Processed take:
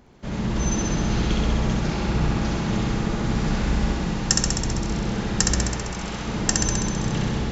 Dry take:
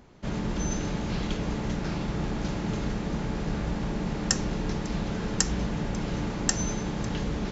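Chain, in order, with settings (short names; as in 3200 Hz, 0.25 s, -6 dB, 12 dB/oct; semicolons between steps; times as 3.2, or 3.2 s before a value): 3.24–4.61 high shelf 4800 Hz +6 dB; AGC gain up to 4 dB; 5.63–6.28 low shelf 400 Hz -10 dB; flutter echo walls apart 11.2 m, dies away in 1.5 s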